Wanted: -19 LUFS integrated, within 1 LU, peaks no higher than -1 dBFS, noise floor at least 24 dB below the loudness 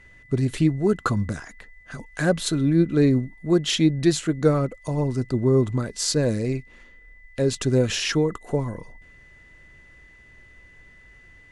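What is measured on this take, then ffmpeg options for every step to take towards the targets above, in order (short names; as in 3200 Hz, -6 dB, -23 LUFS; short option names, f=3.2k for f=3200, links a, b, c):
steady tone 2000 Hz; tone level -50 dBFS; loudness -23.0 LUFS; peak -6.5 dBFS; loudness target -19.0 LUFS
-> -af "bandreject=f=2k:w=30"
-af "volume=4dB"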